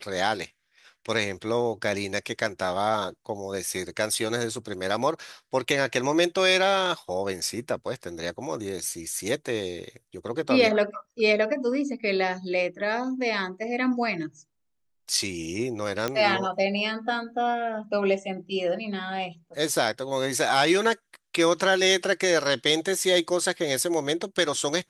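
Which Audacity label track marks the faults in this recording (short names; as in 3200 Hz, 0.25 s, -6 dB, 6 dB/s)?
16.080000	16.080000	pop -12 dBFS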